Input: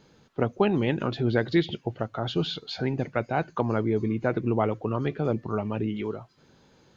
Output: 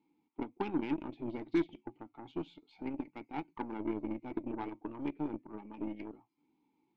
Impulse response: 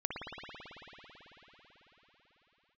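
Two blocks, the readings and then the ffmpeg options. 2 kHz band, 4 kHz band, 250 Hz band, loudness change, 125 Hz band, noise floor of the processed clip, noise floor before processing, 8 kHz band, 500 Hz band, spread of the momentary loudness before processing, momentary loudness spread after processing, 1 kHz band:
−15.5 dB, −21.5 dB, −9.0 dB, −12.0 dB, −22.0 dB, −79 dBFS, −60 dBFS, can't be measured, −15.5 dB, 8 LU, 14 LU, −12.0 dB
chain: -filter_complex "[0:a]asplit=3[link_01][link_02][link_03];[link_01]bandpass=frequency=300:width_type=q:width=8,volume=0dB[link_04];[link_02]bandpass=frequency=870:width_type=q:width=8,volume=-6dB[link_05];[link_03]bandpass=frequency=2240:width_type=q:width=8,volume=-9dB[link_06];[link_04][link_05][link_06]amix=inputs=3:normalize=0,flanger=delay=3.8:depth=3.3:regen=-74:speed=0.32:shape=sinusoidal,aeval=exprs='0.0501*(cos(1*acos(clip(val(0)/0.0501,-1,1)))-cos(1*PI/2))+0.00398*(cos(7*acos(clip(val(0)/0.0501,-1,1)))-cos(7*PI/2))+0.002*(cos(8*acos(clip(val(0)/0.0501,-1,1)))-cos(8*PI/2))':channel_layout=same,volume=5.5dB"

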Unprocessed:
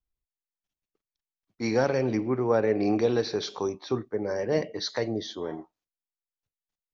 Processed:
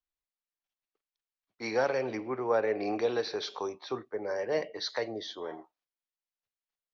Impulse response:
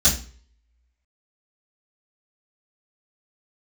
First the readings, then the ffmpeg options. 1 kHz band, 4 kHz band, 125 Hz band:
−1.5 dB, −2.5 dB, −14.5 dB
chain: -filter_complex "[0:a]acrossover=split=420 5700:gain=0.2 1 0.158[link_01][link_02][link_03];[link_01][link_02][link_03]amix=inputs=3:normalize=0,volume=-1dB"

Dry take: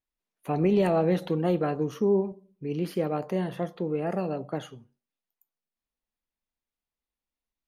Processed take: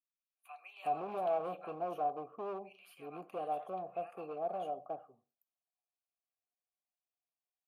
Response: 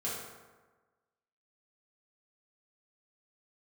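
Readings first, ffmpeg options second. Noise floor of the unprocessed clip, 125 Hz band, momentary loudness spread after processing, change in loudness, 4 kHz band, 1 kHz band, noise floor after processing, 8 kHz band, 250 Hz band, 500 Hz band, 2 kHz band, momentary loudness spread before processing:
below −85 dBFS, −27.0 dB, 15 LU, −12.0 dB, below −10 dB, −2.0 dB, below −85 dBFS, can't be measured, −23.0 dB, −12.0 dB, −13.5 dB, 13 LU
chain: -filter_complex "[0:a]acrossover=split=1300[link_01][link_02];[link_01]adelay=370[link_03];[link_03][link_02]amix=inputs=2:normalize=0,aexciter=amount=9.8:drive=4.6:freq=8200,asoftclip=type=hard:threshold=-24dB,asplit=3[link_04][link_05][link_06];[link_04]bandpass=frequency=730:width_type=q:width=8,volume=0dB[link_07];[link_05]bandpass=frequency=1090:width_type=q:width=8,volume=-6dB[link_08];[link_06]bandpass=frequency=2440:width_type=q:width=8,volume=-9dB[link_09];[link_07][link_08][link_09]amix=inputs=3:normalize=0,volume=2.5dB"

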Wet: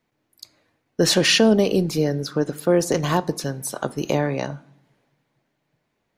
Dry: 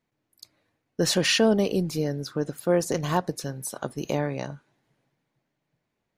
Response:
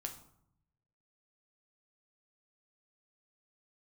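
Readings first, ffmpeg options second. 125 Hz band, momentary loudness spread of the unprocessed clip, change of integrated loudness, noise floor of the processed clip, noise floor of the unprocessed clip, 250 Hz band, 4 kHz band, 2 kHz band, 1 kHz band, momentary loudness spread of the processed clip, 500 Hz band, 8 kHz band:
+4.5 dB, 13 LU, +5.0 dB, −74 dBFS, −80 dBFS, +5.5 dB, +5.5 dB, +5.0 dB, +4.0 dB, 13 LU, +5.0 dB, +5.0 dB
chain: -filter_complex "[0:a]acrossover=split=440|3000[link_01][link_02][link_03];[link_02]acompressor=threshold=-27dB:ratio=6[link_04];[link_01][link_04][link_03]amix=inputs=3:normalize=0,asplit=2[link_05][link_06];[link_06]highpass=190,lowpass=6700[link_07];[1:a]atrim=start_sample=2205[link_08];[link_07][link_08]afir=irnorm=-1:irlink=0,volume=-7dB[link_09];[link_05][link_09]amix=inputs=2:normalize=0,volume=4.5dB"

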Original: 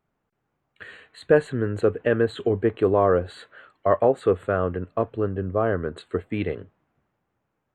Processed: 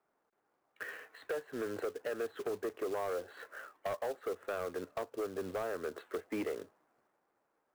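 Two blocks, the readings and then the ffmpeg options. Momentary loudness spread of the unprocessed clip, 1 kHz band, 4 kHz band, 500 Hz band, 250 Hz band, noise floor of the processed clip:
10 LU, −14.5 dB, can't be measured, −15.5 dB, −16.5 dB, −80 dBFS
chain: -filter_complex "[0:a]acrossover=split=260|3200[link_01][link_02][link_03];[link_03]alimiter=level_in=19.5dB:limit=-24dB:level=0:latency=1,volume=-19.5dB[link_04];[link_01][link_02][link_04]amix=inputs=3:normalize=0,acrossover=split=300 2200:gain=0.0708 1 0.158[link_05][link_06][link_07];[link_05][link_06][link_07]amix=inputs=3:normalize=0,acompressor=threshold=-32dB:ratio=8,acrusher=bits=3:mode=log:mix=0:aa=0.000001,volume=32.5dB,asoftclip=hard,volume=-32.5dB,volume=1dB"

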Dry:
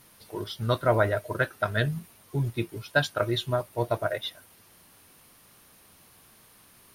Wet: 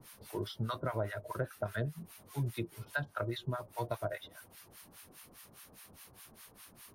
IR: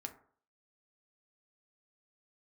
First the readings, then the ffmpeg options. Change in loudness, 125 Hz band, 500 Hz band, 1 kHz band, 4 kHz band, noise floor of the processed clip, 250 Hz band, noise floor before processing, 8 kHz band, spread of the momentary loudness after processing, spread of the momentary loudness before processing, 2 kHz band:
−10.5 dB, −8.5 dB, −11.5 dB, −10.0 dB, −13.0 dB, −61 dBFS, −8.5 dB, −57 dBFS, −5.5 dB, 17 LU, 12 LU, −12.0 dB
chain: -filter_complex "[0:a]acrossover=split=910[link_01][link_02];[link_01]aeval=exprs='val(0)*(1-1/2+1/2*cos(2*PI*4.9*n/s))':channel_layout=same[link_03];[link_02]aeval=exprs='val(0)*(1-1/2-1/2*cos(2*PI*4.9*n/s))':channel_layout=same[link_04];[link_03][link_04]amix=inputs=2:normalize=0,acrossover=split=130|1300[link_05][link_06][link_07];[link_05]acompressor=threshold=-47dB:ratio=4[link_08];[link_06]acompressor=threshold=-41dB:ratio=4[link_09];[link_07]acompressor=threshold=-52dB:ratio=4[link_10];[link_08][link_09][link_10]amix=inputs=3:normalize=0,volume=4.5dB"

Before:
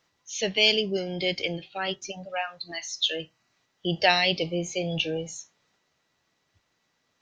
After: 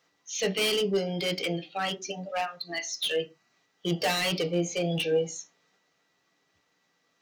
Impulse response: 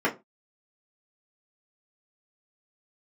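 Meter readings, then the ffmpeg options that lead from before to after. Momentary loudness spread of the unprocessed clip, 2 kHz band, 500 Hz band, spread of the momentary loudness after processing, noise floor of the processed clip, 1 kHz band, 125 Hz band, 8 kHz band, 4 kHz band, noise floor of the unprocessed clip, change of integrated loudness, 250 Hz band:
15 LU, −4.5 dB, +0.5 dB, 9 LU, −73 dBFS, −3.0 dB, +0.5 dB, +1.5 dB, −4.5 dB, −74 dBFS, −2.5 dB, +0.5 dB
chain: -filter_complex "[0:a]lowshelf=frequency=340:gain=-8.5,asoftclip=type=hard:threshold=-26dB,asplit=2[link_01][link_02];[1:a]atrim=start_sample=2205,lowshelf=frequency=430:gain=11[link_03];[link_02][link_03]afir=irnorm=-1:irlink=0,volume=-19.5dB[link_04];[link_01][link_04]amix=inputs=2:normalize=0"

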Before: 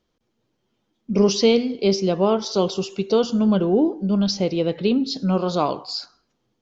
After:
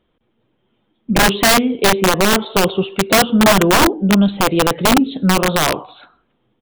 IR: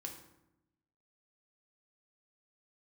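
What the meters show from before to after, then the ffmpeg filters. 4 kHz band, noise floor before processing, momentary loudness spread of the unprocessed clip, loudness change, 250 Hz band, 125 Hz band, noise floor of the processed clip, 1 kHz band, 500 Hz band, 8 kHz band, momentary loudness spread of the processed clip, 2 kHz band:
+9.5 dB, −73 dBFS, 6 LU, +7.0 dB, +4.5 dB, +6.0 dB, −66 dBFS, +12.5 dB, +3.0 dB, can't be measured, 6 LU, +21.0 dB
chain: -af "aresample=8000,aresample=44100,aeval=exprs='(mod(4.73*val(0)+1,2)-1)/4.73':channel_layout=same,volume=7.5dB"

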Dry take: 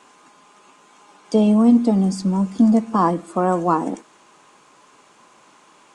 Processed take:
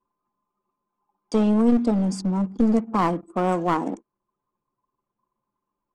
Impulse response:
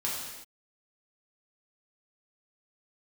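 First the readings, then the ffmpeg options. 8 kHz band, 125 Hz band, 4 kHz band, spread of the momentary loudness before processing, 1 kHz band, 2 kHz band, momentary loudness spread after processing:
−4.5 dB, −4.0 dB, can't be measured, 8 LU, −4.0 dB, 0.0 dB, 7 LU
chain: -af "aeval=exprs='clip(val(0),-1,0.133)':channel_layout=same,anlmdn=3.98,volume=-3dB"

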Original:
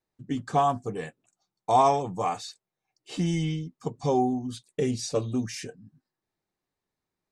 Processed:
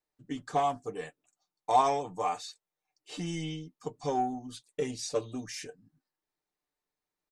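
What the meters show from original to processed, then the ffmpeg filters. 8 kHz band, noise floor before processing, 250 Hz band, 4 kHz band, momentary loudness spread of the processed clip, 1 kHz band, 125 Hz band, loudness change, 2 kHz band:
−3.0 dB, below −85 dBFS, −8.5 dB, −3.0 dB, 16 LU, −4.0 dB, −11.0 dB, −5.0 dB, −3.0 dB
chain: -filter_complex "[0:a]asplit=2[link_01][link_02];[link_02]asoftclip=type=tanh:threshold=-23.5dB,volume=-11dB[link_03];[link_01][link_03]amix=inputs=2:normalize=0,equalizer=frequency=120:width_type=o:width=2.1:gain=-10.5,aecho=1:1:6.7:0.42,aeval=exprs='0.398*(cos(1*acos(clip(val(0)/0.398,-1,1)))-cos(1*PI/2))+0.00794*(cos(7*acos(clip(val(0)/0.398,-1,1)))-cos(7*PI/2))':channel_layout=same,volume=-4.5dB"

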